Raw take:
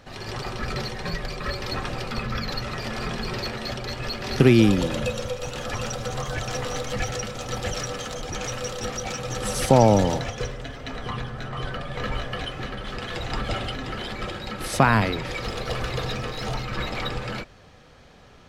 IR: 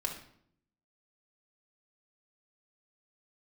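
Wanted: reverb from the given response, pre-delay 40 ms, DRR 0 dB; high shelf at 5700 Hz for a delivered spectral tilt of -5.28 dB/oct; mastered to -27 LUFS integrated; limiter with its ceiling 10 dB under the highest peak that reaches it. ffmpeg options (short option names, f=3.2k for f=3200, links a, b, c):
-filter_complex "[0:a]highshelf=f=5.7k:g=-8.5,alimiter=limit=-12.5dB:level=0:latency=1,asplit=2[a][b];[1:a]atrim=start_sample=2205,adelay=40[c];[b][c]afir=irnorm=-1:irlink=0,volume=-2.5dB[d];[a][d]amix=inputs=2:normalize=0,volume=-0.5dB"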